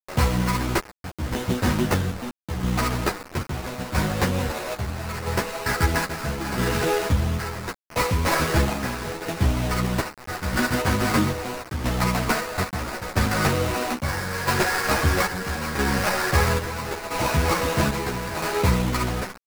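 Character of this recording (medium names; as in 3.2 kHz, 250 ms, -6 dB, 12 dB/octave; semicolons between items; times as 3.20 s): aliases and images of a low sample rate 3.3 kHz, jitter 20%; chopped level 0.76 Hz, depth 60%, duty 60%; a quantiser's noise floor 6-bit, dither none; a shimmering, thickened sound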